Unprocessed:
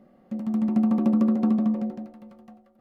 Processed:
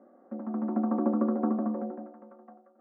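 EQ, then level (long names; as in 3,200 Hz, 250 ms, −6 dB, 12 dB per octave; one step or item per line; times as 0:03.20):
elliptic band-pass filter 270–1,500 Hz, stop band 50 dB
+2.0 dB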